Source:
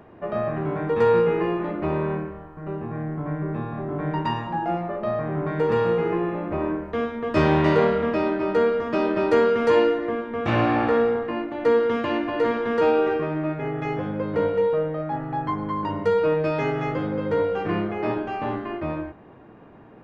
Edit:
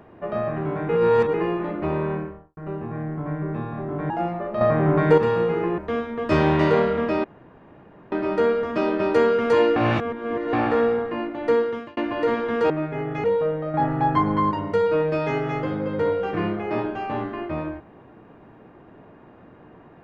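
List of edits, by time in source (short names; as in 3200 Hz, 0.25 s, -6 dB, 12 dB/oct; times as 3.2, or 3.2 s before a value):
0.89–1.34 reverse
2.22–2.57 studio fade out
4.1–4.59 cut
5.1–5.67 gain +7.5 dB
6.27–6.83 cut
8.29 insert room tone 0.88 s
9.93–10.7 reverse
11.68–12.14 fade out
12.87–13.37 cut
13.91–14.56 cut
15.06–15.83 gain +6.5 dB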